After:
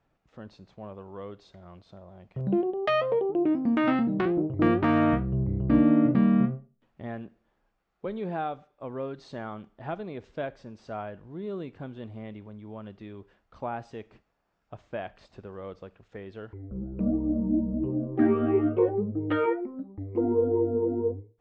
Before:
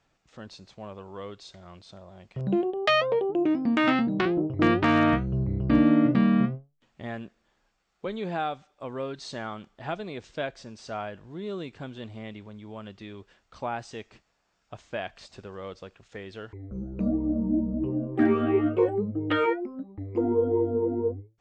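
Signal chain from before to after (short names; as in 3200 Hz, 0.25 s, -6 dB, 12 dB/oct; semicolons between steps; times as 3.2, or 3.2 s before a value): LPF 1100 Hz 6 dB/oct; on a send: reverb RT60 0.40 s, pre-delay 38 ms, DRR 20.5 dB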